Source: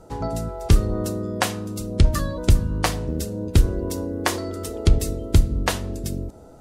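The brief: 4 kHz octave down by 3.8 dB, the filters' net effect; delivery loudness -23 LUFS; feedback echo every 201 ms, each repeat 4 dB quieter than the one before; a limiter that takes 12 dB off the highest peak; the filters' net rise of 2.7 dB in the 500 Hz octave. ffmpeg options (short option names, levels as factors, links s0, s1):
-af "equalizer=f=500:t=o:g=3.5,equalizer=f=4000:t=o:g=-5,alimiter=limit=0.224:level=0:latency=1,aecho=1:1:201|402|603|804|1005|1206|1407|1608|1809:0.631|0.398|0.25|0.158|0.0994|0.0626|0.0394|0.0249|0.0157,volume=1.19"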